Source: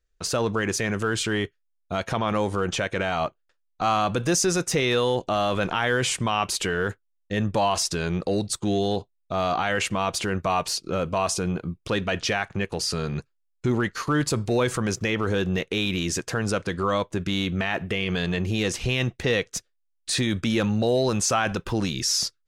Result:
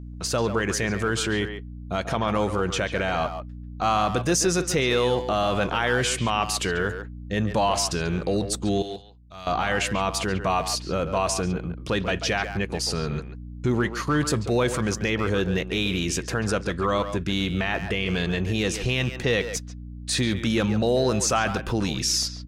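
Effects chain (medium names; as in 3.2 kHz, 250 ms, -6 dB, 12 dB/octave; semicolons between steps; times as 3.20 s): hum 60 Hz, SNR 12 dB; 8.82–9.47 s: amplifier tone stack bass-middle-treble 5-5-5; speakerphone echo 140 ms, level -8 dB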